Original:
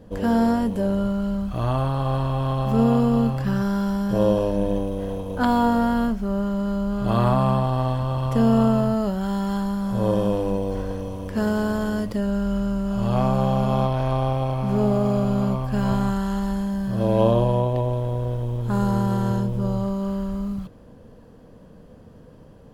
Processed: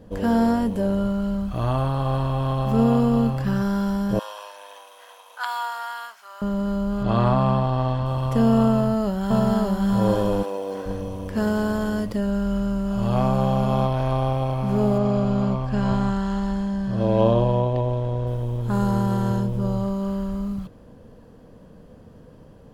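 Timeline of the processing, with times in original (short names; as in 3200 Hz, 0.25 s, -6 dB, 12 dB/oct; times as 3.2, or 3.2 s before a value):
4.19–6.42 HPF 1000 Hz 24 dB/oct
7.03–8.06 LPF 5900 Hz
8.71–9.86 echo throw 0.59 s, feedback 15%, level -0.5 dB
10.42–10.85 HPF 570 Hz -> 260 Hz
14.98–18.27 LPF 6400 Hz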